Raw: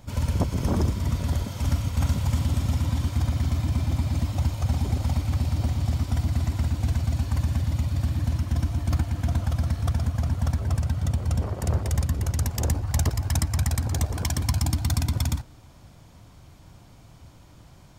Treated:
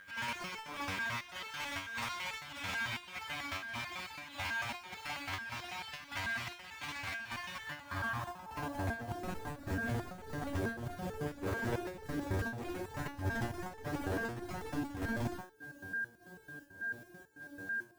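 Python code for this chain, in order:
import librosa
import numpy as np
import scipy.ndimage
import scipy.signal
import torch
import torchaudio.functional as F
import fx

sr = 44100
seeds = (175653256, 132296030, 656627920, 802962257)

p1 = fx.dynamic_eq(x, sr, hz=980.0, q=1.8, threshold_db=-52.0, ratio=4.0, max_db=6)
p2 = fx.filter_sweep_bandpass(p1, sr, from_hz=2300.0, to_hz=370.0, start_s=7.5, end_s=9.31, q=2.0)
p3 = p2 + 10.0 ** (-52.0 / 20.0) * np.sin(2.0 * np.pi * 1600.0 * np.arange(len(p2)) / sr)
p4 = fx.fold_sine(p3, sr, drive_db=17, ceiling_db=-20.5)
p5 = p3 + F.gain(torch.from_numpy(p4), -11.0).numpy()
p6 = fx.quant_float(p5, sr, bits=2)
p7 = fx.volume_shaper(p6, sr, bpm=101, per_beat=1, depth_db=-11, release_ms=170.0, shape='slow start')
p8 = fx.resonator_held(p7, sr, hz=9.1, low_hz=95.0, high_hz=440.0)
y = F.gain(torch.from_numpy(p8), 7.0).numpy()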